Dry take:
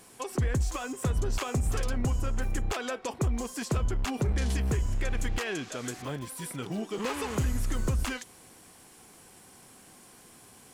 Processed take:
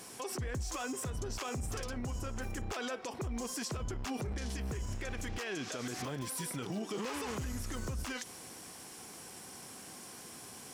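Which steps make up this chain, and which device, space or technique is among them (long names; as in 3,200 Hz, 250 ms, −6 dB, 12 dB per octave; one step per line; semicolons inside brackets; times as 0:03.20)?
broadcast voice chain (high-pass filter 93 Hz 6 dB per octave; de-essing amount 75%; downward compressor, threshold −34 dBFS, peak gain reduction 9 dB; parametric band 5,500 Hz +5.5 dB 0.39 octaves; brickwall limiter −34 dBFS, peak gain reduction 10.5 dB)
level +4 dB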